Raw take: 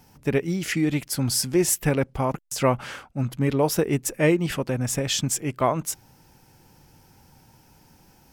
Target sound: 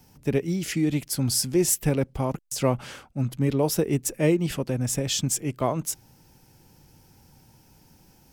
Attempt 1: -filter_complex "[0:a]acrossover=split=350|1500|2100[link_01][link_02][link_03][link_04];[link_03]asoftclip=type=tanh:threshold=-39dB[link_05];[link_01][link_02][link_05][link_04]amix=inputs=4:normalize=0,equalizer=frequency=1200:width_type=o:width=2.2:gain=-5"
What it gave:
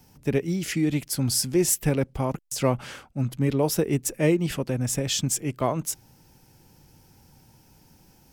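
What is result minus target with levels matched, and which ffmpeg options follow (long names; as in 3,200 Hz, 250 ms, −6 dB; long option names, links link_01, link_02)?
soft clipping: distortion −6 dB
-filter_complex "[0:a]acrossover=split=350|1500|2100[link_01][link_02][link_03][link_04];[link_03]asoftclip=type=tanh:threshold=-51dB[link_05];[link_01][link_02][link_05][link_04]amix=inputs=4:normalize=0,equalizer=frequency=1200:width_type=o:width=2.2:gain=-5"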